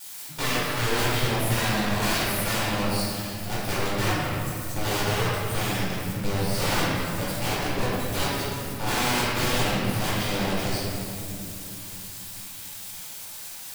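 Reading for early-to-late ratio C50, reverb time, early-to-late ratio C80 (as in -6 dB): -3.5 dB, 2.7 s, -1.5 dB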